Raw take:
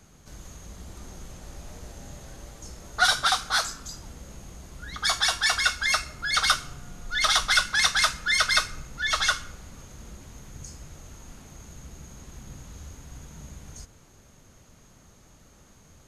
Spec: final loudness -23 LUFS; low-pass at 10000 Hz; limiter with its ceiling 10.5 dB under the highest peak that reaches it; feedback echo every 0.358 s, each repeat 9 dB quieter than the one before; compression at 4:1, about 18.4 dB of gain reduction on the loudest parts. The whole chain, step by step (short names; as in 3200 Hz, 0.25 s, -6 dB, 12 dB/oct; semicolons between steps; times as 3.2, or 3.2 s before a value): LPF 10000 Hz; compressor 4:1, threshold -40 dBFS; limiter -35 dBFS; feedback echo 0.358 s, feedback 35%, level -9 dB; gain +22.5 dB